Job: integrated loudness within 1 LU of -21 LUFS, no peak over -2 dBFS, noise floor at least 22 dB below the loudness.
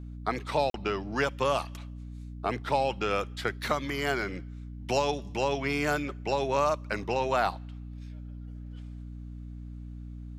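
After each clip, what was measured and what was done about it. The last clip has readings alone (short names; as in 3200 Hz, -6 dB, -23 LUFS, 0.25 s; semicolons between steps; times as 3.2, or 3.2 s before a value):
dropouts 1; longest dropout 42 ms; hum 60 Hz; harmonics up to 300 Hz; hum level -38 dBFS; loudness -30.0 LUFS; peak -13.0 dBFS; loudness target -21.0 LUFS
-> interpolate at 0.7, 42 ms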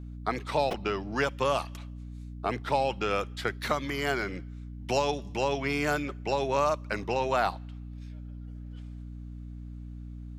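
dropouts 0; hum 60 Hz; harmonics up to 300 Hz; hum level -38 dBFS
-> de-hum 60 Hz, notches 5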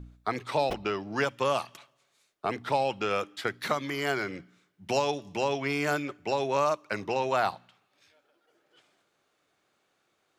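hum none; loudness -30.0 LUFS; peak -13.5 dBFS; loudness target -21.0 LUFS
-> gain +9 dB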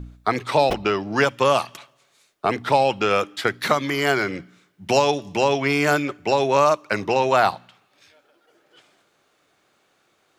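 loudness -21.0 LUFS; peak -4.5 dBFS; noise floor -65 dBFS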